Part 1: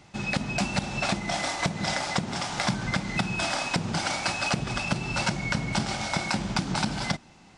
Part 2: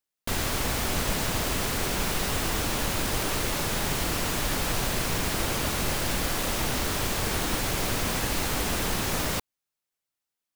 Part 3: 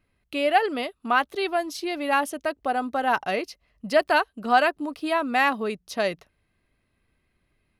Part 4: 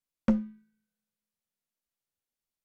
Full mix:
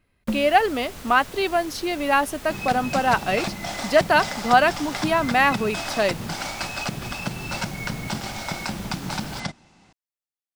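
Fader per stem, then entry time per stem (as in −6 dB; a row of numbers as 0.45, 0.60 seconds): −2.0, −12.5, +3.0, −1.5 decibels; 2.35, 0.00, 0.00, 0.00 seconds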